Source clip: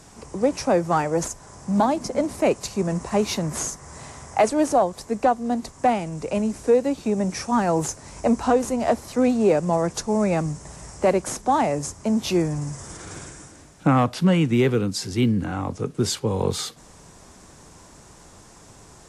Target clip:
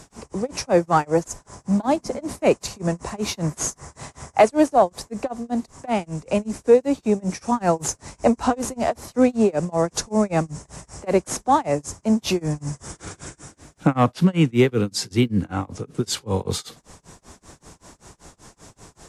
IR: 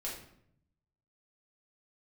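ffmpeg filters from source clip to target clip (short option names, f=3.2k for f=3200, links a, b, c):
-af "tremolo=f=5.2:d=0.98,volume=4.5dB"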